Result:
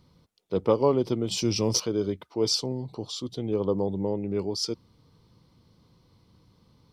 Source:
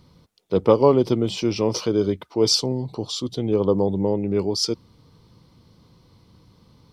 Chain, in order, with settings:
0:01.31–0:01.80: bass and treble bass +7 dB, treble +14 dB
level −6.5 dB

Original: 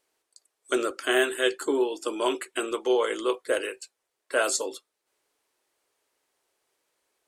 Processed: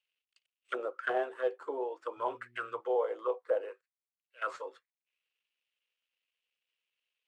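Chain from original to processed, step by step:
variable-slope delta modulation 64 kbit/s
0:03.74–0:04.42: volume swells 692 ms
high-shelf EQ 5,500 Hz −5.5 dB
0:00.80–0:01.25: transient designer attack +4 dB, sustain −1 dB
thirty-one-band graphic EQ 125 Hz +10 dB, 500 Hz +11 dB, 800 Hz −5 dB
envelope filter 780–2,800 Hz, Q 5.4, down, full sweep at −18.5 dBFS
0:02.16–0:02.79: hum with harmonics 120 Hz, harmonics 3, −67 dBFS
level +2 dB

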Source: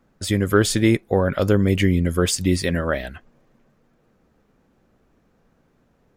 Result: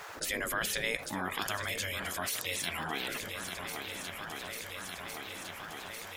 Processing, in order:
0:01.06–0:03.08: Bessel high-pass filter 610 Hz, order 2
gate on every frequency bin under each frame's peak −15 dB weak
feedback echo with a long and a short gap by turns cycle 1,408 ms, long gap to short 1.5 to 1, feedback 41%, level −17.5 dB
envelope flattener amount 70%
level −6 dB

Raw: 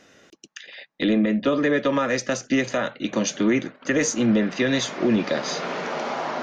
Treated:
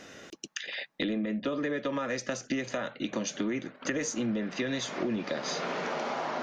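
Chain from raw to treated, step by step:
downward compressor 4 to 1, threshold −37 dBFS, peak gain reduction 17.5 dB
level +5 dB

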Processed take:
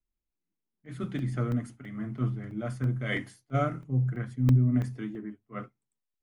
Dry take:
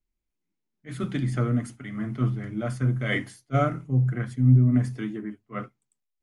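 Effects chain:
regular buffer underruns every 0.33 s, samples 64, zero, from 0:00.53
one half of a high-frequency compander decoder only
level −4.5 dB

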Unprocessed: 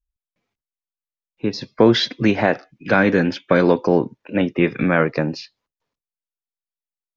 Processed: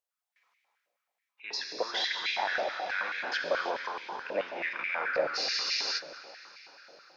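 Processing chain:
reversed playback
downward compressor 6 to 1, threshold −27 dBFS, peak gain reduction 18 dB
reversed playback
brickwall limiter −25.5 dBFS, peak gain reduction 10.5 dB
on a send: feedback delay with all-pass diffusion 462 ms, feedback 55%, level −11 dB
on the sum: reverb whose tail is shaped and stops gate 370 ms flat, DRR 1.5 dB
frozen spectrum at 0:05.38, 0.59 s
high-pass on a step sequencer 9.3 Hz 610–2,200 Hz
level +2 dB

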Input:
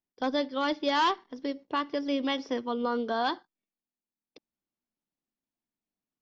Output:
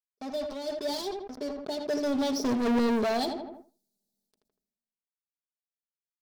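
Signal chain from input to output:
source passing by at 0:02.68, 9 m/s, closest 1.6 metres
elliptic band-stop filter 710–4,000 Hz
comb filter 4.8 ms, depth 84%
leveller curve on the samples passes 5
feedback echo with a low-pass in the loop 80 ms, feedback 19%, low-pass 1,900 Hz, level −11.5 dB
level that may fall only so fast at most 50 dB per second
level −2 dB

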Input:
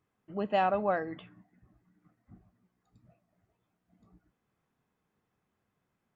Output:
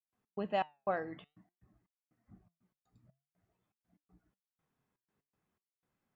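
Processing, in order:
gate pattern ".x.xx..xxx" 121 BPM −60 dB
flanger 0.5 Hz, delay 3.3 ms, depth 4.9 ms, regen +86%

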